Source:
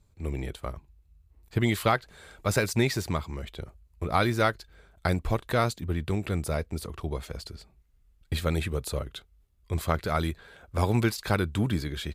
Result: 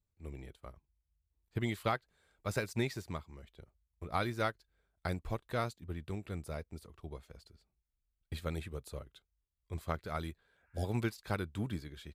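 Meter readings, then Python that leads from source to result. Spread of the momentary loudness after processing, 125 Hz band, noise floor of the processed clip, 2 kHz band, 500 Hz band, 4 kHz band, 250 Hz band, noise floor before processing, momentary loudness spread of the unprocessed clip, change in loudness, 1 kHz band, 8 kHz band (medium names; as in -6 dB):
17 LU, -11.0 dB, under -85 dBFS, -10.5 dB, -10.5 dB, -12.0 dB, -10.5 dB, -64 dBFS, 15 LU, -10.5 dB, -10.0 dB, -14.5 dB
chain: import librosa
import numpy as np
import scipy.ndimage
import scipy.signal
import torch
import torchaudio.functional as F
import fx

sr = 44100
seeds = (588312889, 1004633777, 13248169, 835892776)

y = fx.spec_repair(x, sr, seeds[0], start_s=10.51, length_s=0.32, low_hz=810.0, high_hz=2800.0, source='before')
y = fx.upward_expand(y, sr, threshold_db=-47.0, expansion=1.5)
y = y * 10.0 ** (-8.5 / 20.0)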